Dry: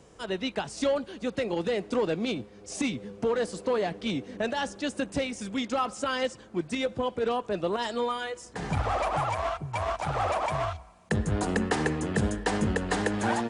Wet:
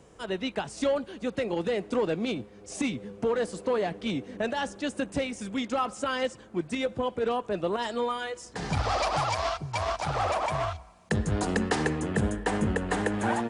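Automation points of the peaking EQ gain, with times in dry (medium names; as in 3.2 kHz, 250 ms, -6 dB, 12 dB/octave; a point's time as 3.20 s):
peaking EQ 4.9 kHz 1 oct
8.12 s -3.5 dB
8.61 s +6 dB
8.94 s +14.5 dB
9.46 s +14.5 dB
10.50 s +2.5 dB
11.77 s +2.5 dB
12.23 s -7 dB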